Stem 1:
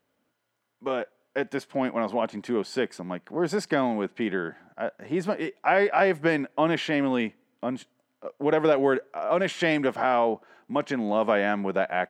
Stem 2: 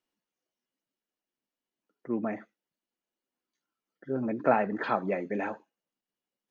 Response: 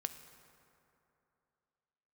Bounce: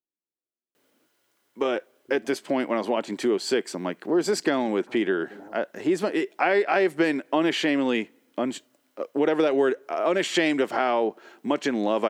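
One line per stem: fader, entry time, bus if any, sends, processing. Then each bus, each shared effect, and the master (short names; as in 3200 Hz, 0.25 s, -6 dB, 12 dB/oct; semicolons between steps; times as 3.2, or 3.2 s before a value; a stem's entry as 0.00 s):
+1.0 dB, 0.75 s, no send, HPF 170 Hz 6 dB/oct; high shelf 2000 Hz +11 dB
-9.5 dB, 0.00 s, no send, LPF 1000 Hz; level quantiser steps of 20 dB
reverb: off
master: bell 350 Hz +10 dB 0.94 oct; compressor 2:1, threshold -23 dBFS, peak gain reduction 7.5 dB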